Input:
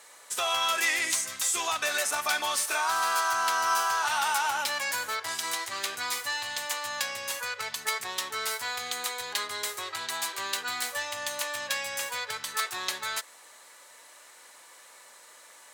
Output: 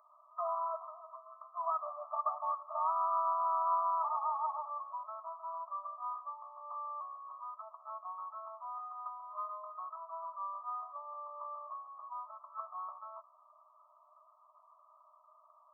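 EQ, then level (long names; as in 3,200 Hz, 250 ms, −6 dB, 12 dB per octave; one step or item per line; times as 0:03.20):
linear-phase brick-wall band-pass 600–1,300 Hz
phaser with its sweep stopped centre 810 Hz, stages 6
dynamic equaliser 840 Hz, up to +5 dB, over −49 dBFS, Q 3.1
0.0 dB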